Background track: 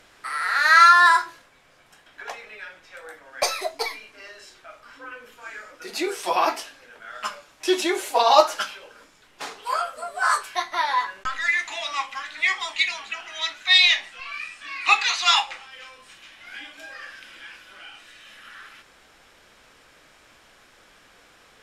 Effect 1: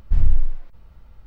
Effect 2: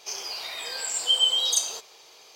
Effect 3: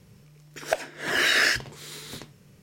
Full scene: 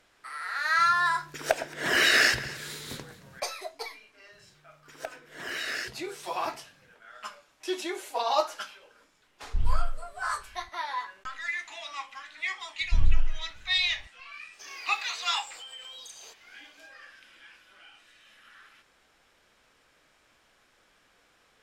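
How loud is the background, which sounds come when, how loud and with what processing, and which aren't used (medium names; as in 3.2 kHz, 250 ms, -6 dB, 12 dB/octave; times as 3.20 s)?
background track -10.5 dB
0.78 s: add 3 + echo whose repeats swap between lows and highs 111 ms, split 1.3 kHz, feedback 54%, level -11.5 dB
4.32 s: add 3 -12.5 dB
9.43 s: add 1 -9.5 dB
12.81 s: add 1 -5.5 dB
14.53 s: add 2 -12.5 dB + compression, threshold -30 dBFS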